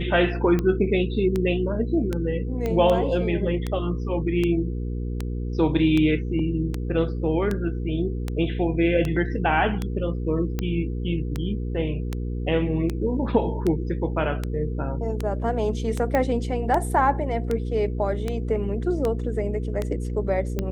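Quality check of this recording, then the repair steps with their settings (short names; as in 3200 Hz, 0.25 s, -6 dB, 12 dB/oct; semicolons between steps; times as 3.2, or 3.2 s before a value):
hum 60 Hz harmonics 8 -28 dBFS
tick 78 rpm -13 dBFS
2.66 pop -15 dBFS
16.15 pop -12 dBFS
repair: de-click; de-hum 60 Hz, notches 8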